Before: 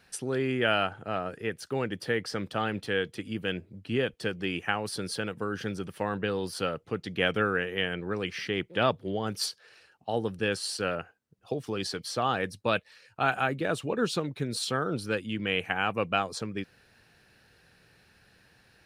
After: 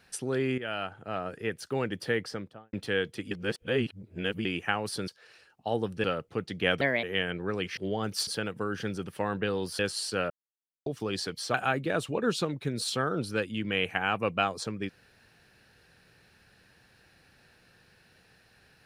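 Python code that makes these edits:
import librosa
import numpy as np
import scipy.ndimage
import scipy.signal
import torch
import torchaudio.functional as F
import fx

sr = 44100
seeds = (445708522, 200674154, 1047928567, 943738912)

y = fx.studio_fade_out(x, sr, start_s=2.14, length_s=0.59)
y = fx.edit(y, sr, fx.fade_in_from(start_s=0.58, length_s=0.83, floor_db=-13.0),
    fx.reverse_span(start_s=3.31, length_s=1.14),
    fx.swap(start_s=5.08, length_s=1.52, other_s=9.5, other_length_s=0.96),
    fx.speed_span(start_s=7.37, length_s=0.29, speed=1.31),
    fx.cut(start_s=8.4, length_s=0.6),
    fx.silence(start_s=10.97, length_s=0.56),
    fx.cut(start_s=12.21, length_s=1.08), tone=tone)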